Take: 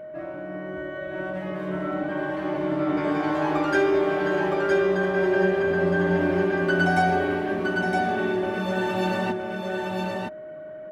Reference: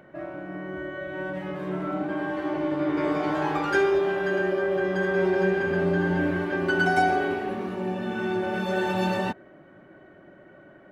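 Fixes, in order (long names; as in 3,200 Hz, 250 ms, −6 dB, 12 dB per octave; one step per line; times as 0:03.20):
notch filter 620 Hz, Q 30
echo removal 965 ms −3.5 dB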